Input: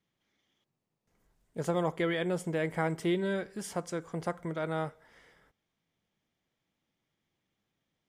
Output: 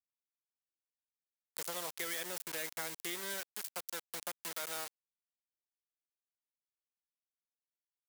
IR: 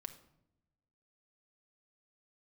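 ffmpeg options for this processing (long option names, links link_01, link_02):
-filter_complex "[0:a]aeval=exprs='val(0)*gte(abs(val(0)),0.02)':channel_layout=same,aderivative,acrossover=split=520|2000|4900[link_01][link_02][link_03][link_04];[link_01]acompressor=threshold=-58dB:ratio=4[link_05];[link_02]acompressor=threshold=-55dB:ratio=4[link_06];[link_03]acompressor=threshold=-59dB:ratio=4[link_07];[link_04]acompressor=threshold=-50dB:ratio=4[link_08];[link_05][link_06][link_07][link_08]amix=inputs=4:normalize=0,volume=11dB"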